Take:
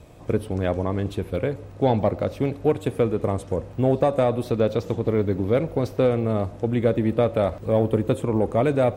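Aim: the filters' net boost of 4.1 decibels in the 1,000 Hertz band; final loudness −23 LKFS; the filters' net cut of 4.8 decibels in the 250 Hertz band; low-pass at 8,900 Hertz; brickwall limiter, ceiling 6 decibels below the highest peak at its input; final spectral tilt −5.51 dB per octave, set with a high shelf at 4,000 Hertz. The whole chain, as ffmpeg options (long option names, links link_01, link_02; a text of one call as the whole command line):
ffmpeg -i in.wav -af "lowpass=8900,equalizer=frequency=250:width_type=o:gain=-6.5,equalizer=frequency=1000:width_type=o:gain=6,highshelf=frequency=4000:gain=7,volume=3dB,alimiter=limit=-11dB:level=0:latency=1" out.wav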